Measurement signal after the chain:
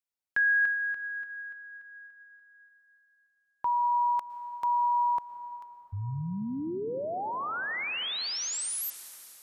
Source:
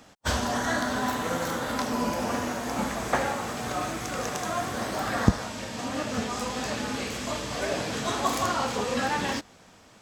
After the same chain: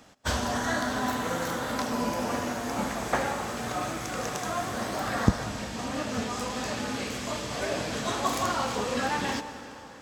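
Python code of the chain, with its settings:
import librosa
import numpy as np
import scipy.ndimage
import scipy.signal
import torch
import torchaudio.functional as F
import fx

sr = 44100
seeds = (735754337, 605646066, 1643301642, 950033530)

y = fx.rev_plate(x, sr, seeds[0], rt60_s=3.8, hf_ratio=0.8, predelay_ms=100, drr_db=11.0)
y = y * 10.0 ** (-1.5 / 20.0)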